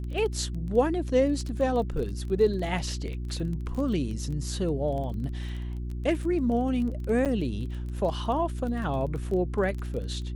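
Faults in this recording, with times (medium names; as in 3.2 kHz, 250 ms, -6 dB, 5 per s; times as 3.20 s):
crackle 18 per s -33 dBFS
hum 60 Hz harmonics 6 -33 dBFS
7.25–7.26 s: dropout 7.5 ms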